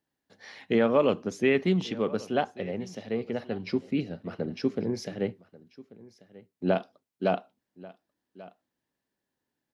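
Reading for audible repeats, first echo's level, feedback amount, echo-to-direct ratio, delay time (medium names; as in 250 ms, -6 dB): 1, -20.5 dB, no regular repeats, -20.5 dB, 1138 ms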